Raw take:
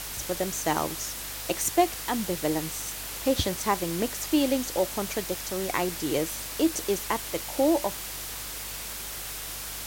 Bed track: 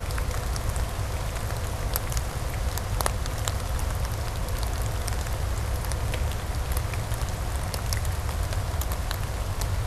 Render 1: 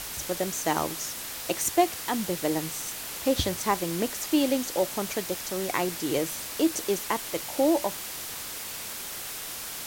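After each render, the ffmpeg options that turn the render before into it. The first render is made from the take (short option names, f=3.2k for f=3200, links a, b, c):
-af "bandreject=f=50:t=h:w=4,bandreject=f=100:t=h:w=4,bandreject=f=150:t=h:w=4"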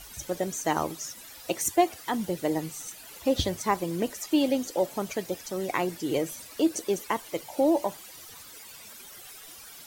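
-af "afftdn=nr=14:nf=-37"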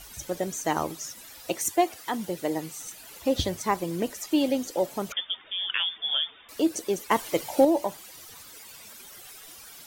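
-filter_complex "[0:a]asettb=1/sr,asplit=3[a][b][c];[a]atrim=end=1.564[d];[b]atrim=start=1.56:end=2.82,asetpts=PTS-STARTPTS,afade=t=in:d=0.004:c=qsin,afade=t=out:st=1.256:d=0.004:c=qsin,lowshelf=f=150:g=-8[e];[c]atrim=start=2.816[f];[d][e]acrossfade=d=0.004:c1=hsin:c2=qsin[g];[g][f]acrossfade=d=0.004:c1=qsin:c2=hsin,asettb=1/sr,asplit=3[h][i][j];[h]atrim=end=5.124[k];[i]atrim=start=5.12:end=6.49,asetpts=PTS-STARTPTS,afade=t=in:d=0.004:c=qsin,afade=t=out:st=1.366:d=0.004:c=qsin,lowpass=f=3.1k:t=q:w=0.5098,lowpass=f=3.1k:t=q:w=0.6013,lowpass=f=3.1k:t=q:w=0.9,lowpass=f=3.1k:t=q:w=2.563,afreqshift=-3700[l];[j]atrim=start=6.486[m];[k][l]acrossfade=d=0.004:c1=hsin:c2=qsin[n];[n][m]acrossfade=d=0.004:c1=qsin:c2=hsin,asettb=1/sr,asplit=3[o][p][q];[o]atrim=end=7.114[r];[p]atrim=start=7.11:end=7.65,asetpts=PTS-STARTPTS,afade=t=in:d=0.004:c=qsin,afade=t=out:st=0.536:d=0.004:c=qsin,acontrast=59[s];[q]atrim=start=7.646[t];[r][s]acrossfade=d=0.004:c1=hsin:c2=qsin[u];[u][t]acrossfade=d=0.004:c1=qsin:c2=hsin"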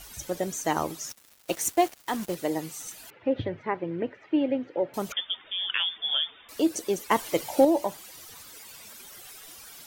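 -filter_complex "[0:a]asettb=1/sr,asplit=3[a][b][c];[a]atrim=end=1.094[d];[b]atrim=start=1.09:end=2.35,asetpts=PTS-STARTPTS,afade=t=in:d=0.004:c=qsin,afade=t=out:st=1.256:d=0.004:c=qsin,acrusher=bits=5:mix=0:aa=0.5[e];[c]atrim=start=2.346[f];[d][e]acrossfade=d=0.004:c1=hsin:c2=qsin[g];[g][f]acrossfade=d=0.004:c1=qsin:c2=hsin,asettb=1/sr,asplit=3[h][i][j];[h]atrim=end=3.104[k];[i]atrim=start=3.1:end=4.94,asetpts=PTS-STARTPTS,afade=t=in:d=0.004:c=qsin,afade=t=out:st=1.836:d=0.004:c=qsin,highpass=f=110:w=0.5412,highpass=f=110:w=1.3066,equalizer=f=110:t=q:w=4:g=7,equalizer=f=200:t=q:w=4:g=-8,equalizer=f=730:t=q:w=4:g=-5,equalizer=f=1.1k:t=q:w=4:g=-8,lowpass=f=2.3k:w=0.5412,lowpass=f=2.3k:w=1.3066[l];[j]atrim=start=4.936[m];[k][l]acrossfade=d=0.004:c1=hsin:c2=qsin[n];[n][m]acrossfade=d=0.004:c1=qsin:c2=hsin"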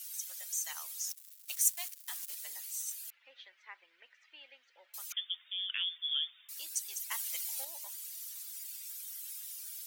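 -af "highpass=1.3k,aderivative"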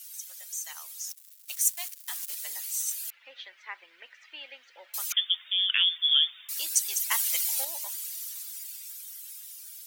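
-af "dynaudnorm=f=250:g=17:m=11.5dB"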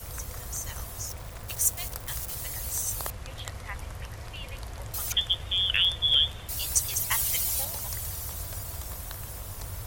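-filter_complex "[1:a]volume=-11dB[a];[0:a][a]amix=inputs=2:normalize=0"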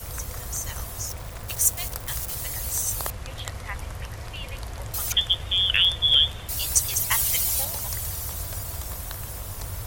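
-af "volume=4dB"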